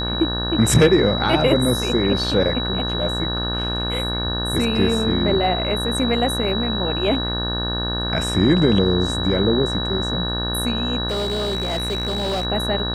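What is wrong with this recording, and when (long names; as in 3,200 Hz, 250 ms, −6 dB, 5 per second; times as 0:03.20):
mains buzz 60 Hz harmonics 30 −26 dBFS
whistle 3,900 Hz −25 dBFS
0:11.08–0:12.45: clipping −19 dBFS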